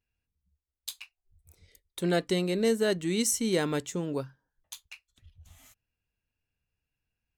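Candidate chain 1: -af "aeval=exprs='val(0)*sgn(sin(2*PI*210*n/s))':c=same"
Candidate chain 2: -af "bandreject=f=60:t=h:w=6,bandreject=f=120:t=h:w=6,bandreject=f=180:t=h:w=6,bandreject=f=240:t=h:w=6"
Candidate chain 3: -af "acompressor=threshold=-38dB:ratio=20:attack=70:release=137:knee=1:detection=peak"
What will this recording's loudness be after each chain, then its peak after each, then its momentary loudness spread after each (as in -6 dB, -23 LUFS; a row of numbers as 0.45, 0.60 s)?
-29.0, -29.0, -39.0 LUFS; -14.5, -15.0, -18.5 dBFS; 20, 20, 18 LU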